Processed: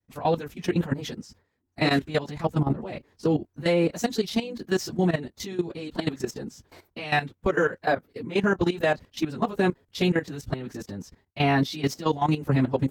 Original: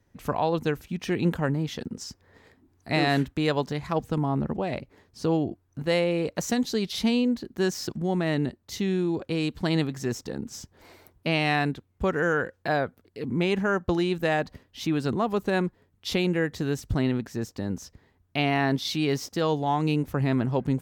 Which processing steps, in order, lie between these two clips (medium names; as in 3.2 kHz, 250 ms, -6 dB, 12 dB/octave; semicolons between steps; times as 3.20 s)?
plain phase-vocoder stretch 0.62×; level held to a coarse grid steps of 14 dB; expander -59 dBFS; trim +7.5 dB